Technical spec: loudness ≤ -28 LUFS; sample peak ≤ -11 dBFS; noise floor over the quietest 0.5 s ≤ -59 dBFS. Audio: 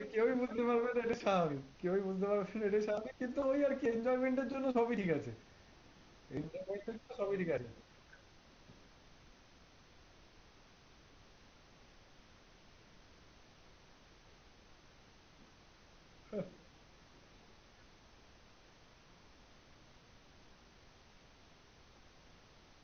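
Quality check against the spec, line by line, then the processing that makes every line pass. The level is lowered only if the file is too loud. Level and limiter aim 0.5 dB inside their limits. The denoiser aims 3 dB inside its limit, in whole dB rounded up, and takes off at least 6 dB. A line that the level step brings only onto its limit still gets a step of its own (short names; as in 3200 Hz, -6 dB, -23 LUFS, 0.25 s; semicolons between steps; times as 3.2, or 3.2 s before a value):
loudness -37.0 LUFS: OK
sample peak -20.5 dBFS: OK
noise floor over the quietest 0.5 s -63 dBFS: OK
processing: none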